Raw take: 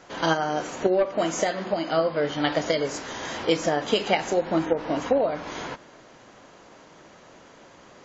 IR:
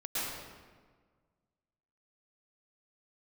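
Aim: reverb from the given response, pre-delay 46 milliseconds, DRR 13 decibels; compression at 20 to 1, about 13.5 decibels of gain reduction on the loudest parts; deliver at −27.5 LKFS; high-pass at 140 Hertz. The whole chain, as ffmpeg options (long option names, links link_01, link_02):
-filter_complex "[0:a]highpass=140,acompressor=threshold=-30dB:ratio=20,asplit=2[link_01][link_02];[1:a]atrim=start_sample=2205,adelay=46[link_03];[link_02][link_03]afir=irnorm=-1:irlink=0,volume=-19dB[link_04];[link_01][link_04]amix=inputs=2:normalize=0,volume=7.5dB"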